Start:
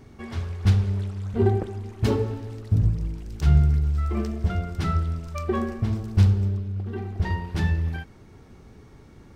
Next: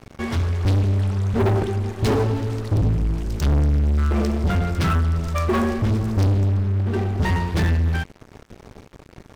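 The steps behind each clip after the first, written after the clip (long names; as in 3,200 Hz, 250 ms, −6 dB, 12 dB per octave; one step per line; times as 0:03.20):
leveller curve on the samples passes 5
level −7.5 dB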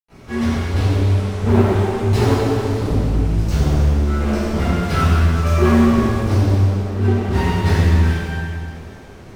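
convolution reverb RT60 2.3 s, pre-delay 83 ms
level −3 dB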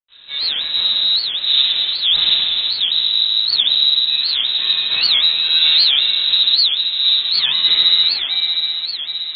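echo machine with several playback heads 259 ms, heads second and third, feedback 61%, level −13.5 dB
voice inversion scrambler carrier 3,900 Hz
wow of a warped record 78 rpm, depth 250 cents
level −2 dB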